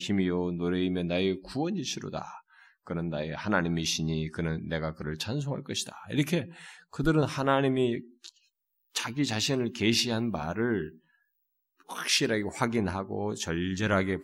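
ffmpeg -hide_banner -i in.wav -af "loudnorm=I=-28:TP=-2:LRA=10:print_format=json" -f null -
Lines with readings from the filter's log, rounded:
"input_i" : "-29.5",
"input_tp" : "-11.1",
"input_lra" : "2.7",
"input_thresh" : "-40.1",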